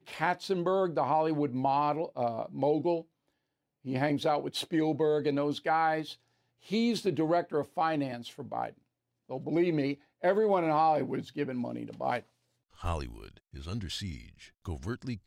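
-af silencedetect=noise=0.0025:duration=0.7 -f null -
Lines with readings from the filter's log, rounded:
silence_start: 3.03
silence_end: 3.85 | silence_duration: 0.81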